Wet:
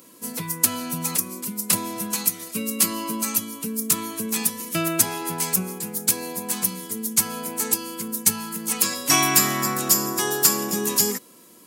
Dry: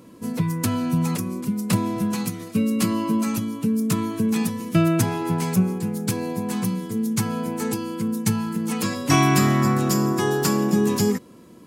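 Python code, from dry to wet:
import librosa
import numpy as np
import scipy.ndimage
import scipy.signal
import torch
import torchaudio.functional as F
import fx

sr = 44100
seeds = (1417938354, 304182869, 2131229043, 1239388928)

y = scipy.signal.sosfilt(scipy.signal.butter(2, 94.0, 'highpass', fs=sr, output='sos'), x)
y = fx.riaa(y, sr, side='recording')
y = y * librosa.db_to_amplitude(-1.5)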